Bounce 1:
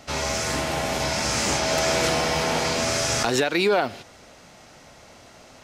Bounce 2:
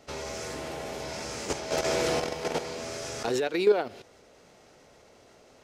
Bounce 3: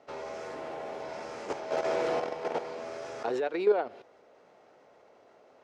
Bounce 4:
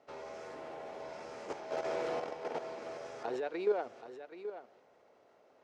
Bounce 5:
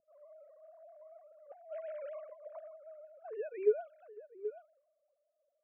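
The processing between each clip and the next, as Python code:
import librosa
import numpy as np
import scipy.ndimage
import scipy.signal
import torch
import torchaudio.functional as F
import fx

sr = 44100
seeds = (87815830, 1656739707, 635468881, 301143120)

y1 = fx.peak_eq(x, sr, hz=430.0, db=10.0, octaves=0.73)
y1 = fx.level_steps(y1, sr, step_db=10)
y1 = F.gain(torch.from_numpy(y1), -6.5).numpy()
y2 = fx.bandpass_q(y1, sr, hz=760.0, q=0.73)
y3 = y2 + 10.0 ** (-11.5 / 20.0) * np.pad(y2, (int(778 * sr / 1000.0), 0))[:len(y2)]
y3 = F.gain(torch.from_numpy(y3), -6.5).numpy()
y4 = fx.sine_speech(y3, sr)
y4 = fx.env_lowpass(y4, sr, base_hz=390.0, full_db=-32.5)
y4 = F.gain(torch.from_numpy(y4), -2.0).numpy()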